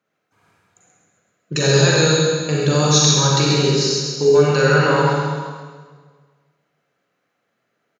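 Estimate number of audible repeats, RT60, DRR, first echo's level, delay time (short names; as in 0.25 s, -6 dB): 1, 1.6 s, -5.0 dB, -5.5 dB, 0.133 s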